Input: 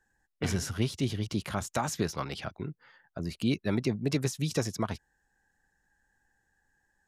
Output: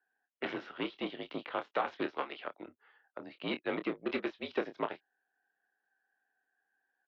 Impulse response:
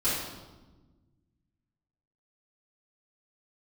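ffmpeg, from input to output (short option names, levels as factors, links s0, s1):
-filter_complex "[0:a]aeval=exprs='0.168*(cos(1*acos(clip(val(0)/0.168,-1,1)))-cos(1*PI/2))+0.0075*(cos(4*acos(clip(val(0)/0.168,-1,1)))-cos(4*PI/2))+0.0133*(cos(7*acos(clip(val(0)/0.168,-1,1)))-cos(7*PI/2))':c=same,asplit=2[s0][s1];[s1]adelay=27,volume=0.355[s2];[s0][s2]amix=inputs=2:normalize=0,highpass=f=380:t=q:w=0.5412,highpass=f=380:t=q:w=1.307,lowpass=f=3500:t=q:w=0.5176,lowpass=f=3500:t=q:w=0.7071,lowpass=f=3500:t=q:w=1.932,afreqshift=-57"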